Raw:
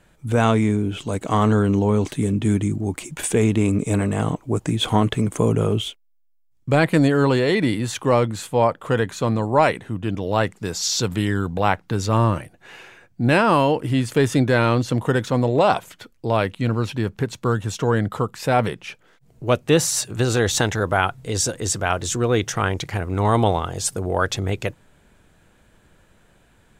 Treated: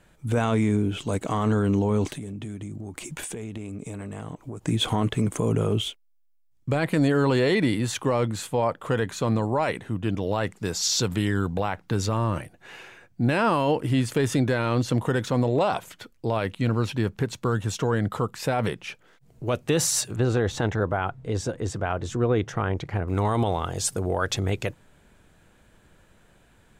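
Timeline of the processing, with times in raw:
2.10–4.68 s: compression 16:1, threshold -29 dBFS
20.16–23.08 s: low-pass 1.2 kHz 6 dB/octave
whole clip: peak limiter -12 dBFS; trim -1.5 dB

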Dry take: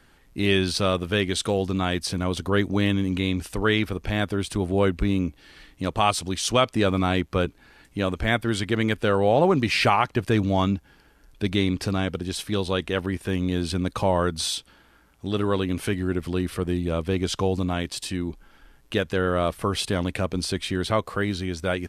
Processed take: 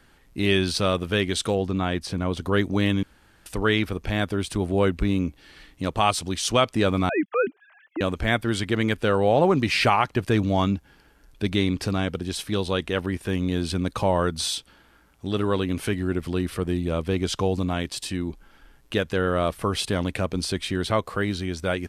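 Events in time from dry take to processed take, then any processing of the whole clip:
1.55–2.41 s: treble shelf 3.4 kHz -8.5 dB
3.03–3.46 s: room tone
7.09–8.01 s: formants replaced by sine waves

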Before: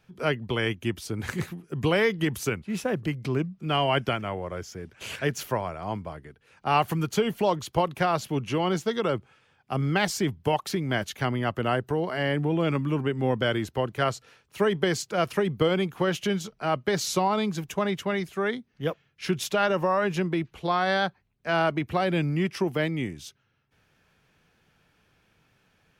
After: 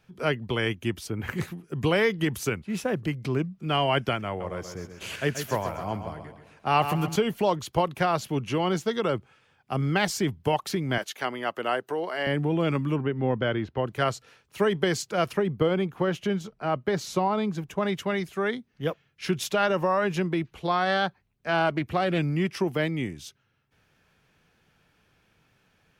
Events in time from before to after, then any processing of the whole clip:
1.07–1.36 s: time-frequency box 3.3–12 kHz -11 dB
4.27–7.16 s: feedback delay 131 ms, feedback 45%, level -9 dB
10.98–12.27 s: high-pass 380 Hz
12.96–13.87 s: distance through air 260 m
15.33–17.83 s: treble shelf 2.5 kHz -9.5 dB
20.85–22.19 s: loudspeaker Doppler distortion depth 0.17 ms

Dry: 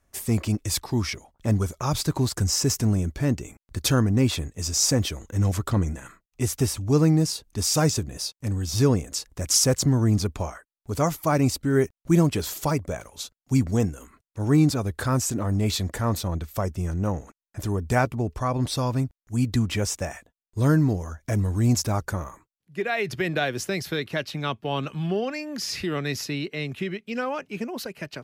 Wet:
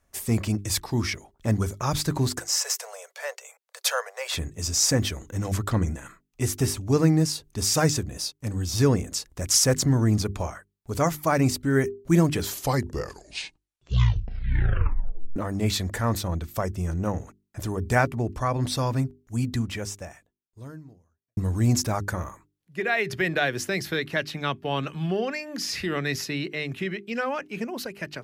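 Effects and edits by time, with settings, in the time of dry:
2.39–4.33 s: steep high-pass 480 Hz 96 dB/octave
12.37 s: tape stop 2.99 s
19.19–21.37 s: fade out quadratic
whole clip: dynamic bell 1.8 kHz, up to +5 dB, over -45 dBFS, Q 2.6; hum notches 50/100/150/200/250/300/350/400 Hz

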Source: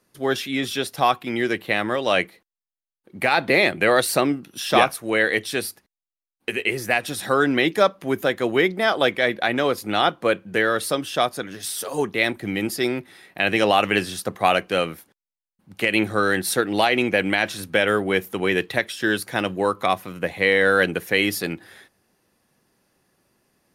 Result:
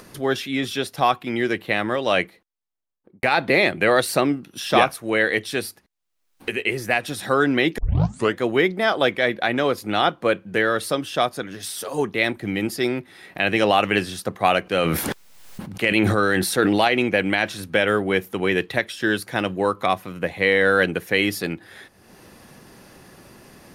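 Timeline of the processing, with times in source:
2.22–3.23 s: studio fade out
7.78 s: tape start 0.60 s
14.63–16.88 s: decay stretcher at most 21 dB/s
whole clip: treble shelf 6.6 kHz -4.5 dB; upward compressor, threshold -30 dBFS; bass shelf 160 Hz +3 dB

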